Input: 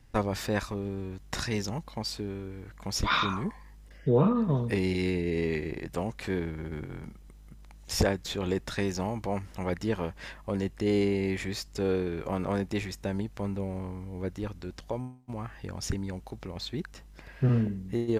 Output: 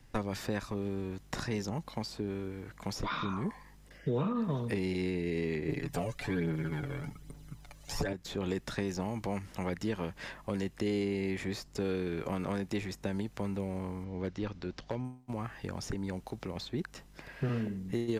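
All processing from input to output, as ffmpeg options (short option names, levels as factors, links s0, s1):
-filter_complex "[0:a]asettb=1/sr,asplit=3[s0][s1][s2];[s0]atrim=end=5.684[s3];[s1]atrim=start=5.68:end=8.13,asetpts=PTS-STARTPTS,afade=t=in:d=0.004:c=qsin,afade=t=out:st=2.446:d=0.004:c=qsin,aphaser=in_gain=1:out_gain=1:delay=1.9:decay=0.54:speed=1.2:type=triangular,aecho=1:1:7:0.74,atrim=end_sample=108045[s4];[s2]atrim=start=8.126[s5];[s3][s4]acrossfade=d=0.004:c1=hsin:c2=qsin[s6];[s6][s5]acrossfade=d=0.004:c1=qsin:c2=hsin,asettb=1/sr,asplit=3[s7][s8][s9];[s7]atrim=end=14.044[s10];[s8]atrim=start=14.04:end=15.05,asetpts=PTS-STARTPTS,afade=t=in:d=0.004:c=qsin,afade=t=out:st=1.006:d=0.004:c=qsin,lowpass=f=5800:w=0.5412,lowpass=f=5800:w=1.3066,asoftclip=type=hard:threshold=0.0596[s11];[s9]atrim=start=15.046[s12];[s10][s11]acrossfade=d=0.004:c1=hsin:c2=qsin[s13];[s13][s12]acrossfade=d=0.004:c1=qsin:c2=hsin,acrossover=split=340|1400[s14][s15][s16];[s14]acompressor=threshold=0.0224:ratio=4[s17];[s15]acompressor=threshold=0.01:ratio=4[s18];[s16]acompressor=threshold=0.00562:ratio=4[s19];[s17][s18][s19]amix=inputs=3:normalize=0,equalizer=f=60:t=o:w=0.86:g=-12.5,volume=1.19"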